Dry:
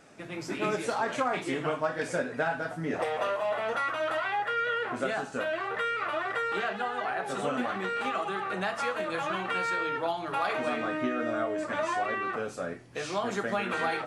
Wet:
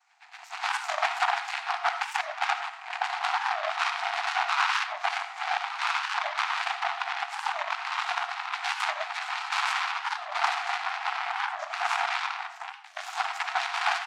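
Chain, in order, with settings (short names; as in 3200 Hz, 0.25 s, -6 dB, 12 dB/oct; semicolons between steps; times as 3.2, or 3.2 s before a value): notch 5200 Hz, Q 17; noise vocoder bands 8; pitch shift -1 st; added harmonics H 4 -13 dB, 5 -37 dB, 7 -18 dB, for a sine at -15.5 dBFS; brick-wall FIR high-pass 680 Hz; reverse echo 0.115 s -13 dB; reverb RT60 0.45 s, pre-delay 35 ms, DRR 8.5 dB; record warp 45 rpm, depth 250 cents; gain +5 dB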